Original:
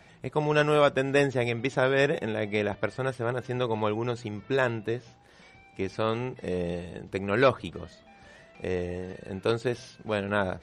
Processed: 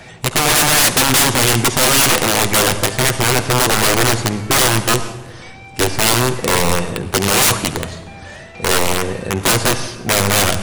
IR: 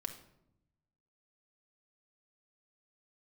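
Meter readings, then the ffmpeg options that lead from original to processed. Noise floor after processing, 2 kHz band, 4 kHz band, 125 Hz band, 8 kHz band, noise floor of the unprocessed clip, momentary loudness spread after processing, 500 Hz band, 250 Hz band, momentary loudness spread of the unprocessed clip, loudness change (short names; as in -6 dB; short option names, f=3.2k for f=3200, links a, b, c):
-36 dBFS, +14.0 dB, +23.0 dB, +12.5 dB, n/a, -55 dBFS, 10 LU, +6.5 dB, +10.5 dB, 13 LU, +14.0 dB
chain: -filter_complex "[0:a]acontrast=64,aeval=exprs='(mod(8.41*val(0)+1,2)-1)/8.41':c=same,asplit=2[a][b];[1:a]atrim=start_sample=2205,asetrate=22932,aresample=44100,highshelf=f=7.7k:g=11[c];[b][c]afir=irnorm=-1:irlink=0,volume=1.5dB[d];[a][d]amix=inputs=2:normalize=0,volume=2dB"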